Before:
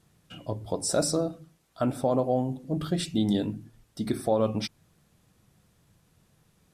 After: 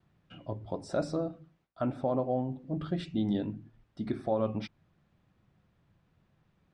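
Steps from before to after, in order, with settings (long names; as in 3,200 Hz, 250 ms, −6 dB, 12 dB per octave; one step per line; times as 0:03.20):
noise gate with hold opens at −58 dBFS
low-pass filter 2,700 Hz 12 dB per octave
notch filter 460 Hz, Q 12
level −4.5 dB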